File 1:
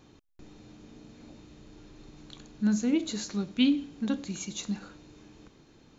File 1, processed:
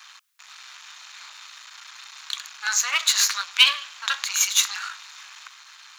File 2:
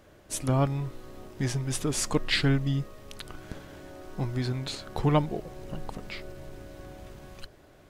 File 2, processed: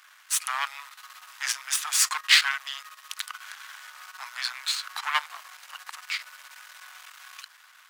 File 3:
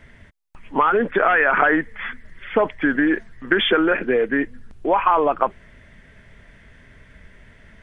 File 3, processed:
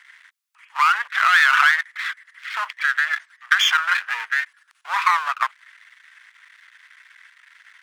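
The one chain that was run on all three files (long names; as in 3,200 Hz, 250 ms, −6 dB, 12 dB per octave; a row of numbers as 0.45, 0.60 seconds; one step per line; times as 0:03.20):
gain on one half-wave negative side −12 dB
Butterworth high-pass 1,100 Hz 36 dB per octave
normalise the peak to −2 dBFS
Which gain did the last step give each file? +22.5, +13.0, +7.0 decibels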